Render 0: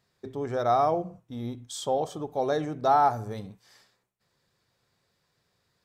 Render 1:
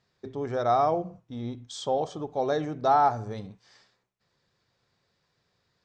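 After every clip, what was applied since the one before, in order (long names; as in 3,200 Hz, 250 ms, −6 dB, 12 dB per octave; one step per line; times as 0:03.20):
low-pass filter 6,700 Hz 24 dB per octave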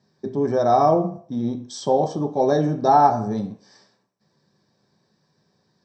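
convolution reverb RT60 0.50 s, pre-delay 3 ms, DRR 3 dB
level −4 dB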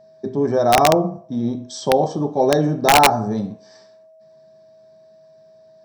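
wrap-around overflow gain 7.5 dB
steady tone 640 Hz −49 dBFS
level +2.5 dB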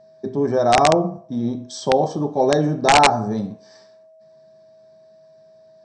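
Chebyshev low-pass filter 8,800 Hz, order 10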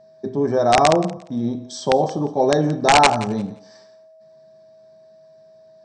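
feedback echo with a high-pass in the loop 175 ms, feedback 20%, high-pass 420 Hz, level −17 dB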